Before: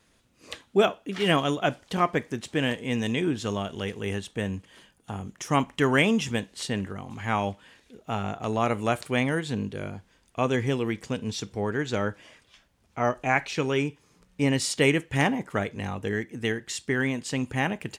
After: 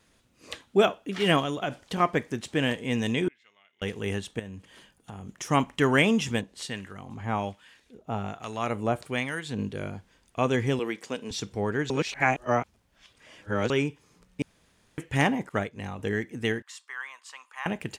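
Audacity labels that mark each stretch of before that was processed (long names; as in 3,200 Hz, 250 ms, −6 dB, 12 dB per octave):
1.410000	2.000000	downward compressor 5 to 1, threshold −25 dBFS
3.280000	3.820000	resonant band-pass 2,100 Hz, Q 20
4.390000	5.290000	downward compressor, threshold −37 dBFS
6.410000	9.590000	two-band tremolo in antiphase 1.2 Hz, crossover 1,100 Hz
10.790000	11.310000	high-pass filter 310 Hz
11.900000	13.700000	reverse
14.420000	14.980000	fill with room tone
15.490000	15.990000	expander for the loud parts, over −46 dBFS
16.620000	17.660000	four-pole ladder high-pass 1,000 Hz, resonance 70%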